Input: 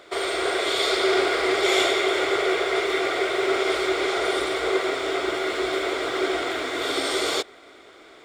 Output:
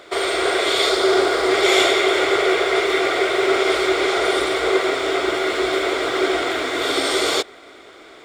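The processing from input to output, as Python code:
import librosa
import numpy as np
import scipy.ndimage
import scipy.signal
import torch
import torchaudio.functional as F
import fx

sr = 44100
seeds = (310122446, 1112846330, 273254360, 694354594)

y = fx.peak_eq(x, sr, hz=2400.0, db=-6.0, octaves=0.89, at=(0.89, 1.52))
y = y * 10.0 ** (5.0 / 20.0)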